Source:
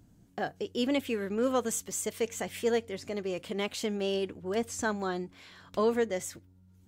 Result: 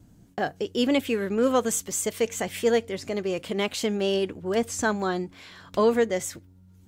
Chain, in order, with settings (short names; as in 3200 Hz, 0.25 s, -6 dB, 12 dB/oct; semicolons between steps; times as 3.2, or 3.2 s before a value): gate with hold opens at -54 dBFS; gain +6 dB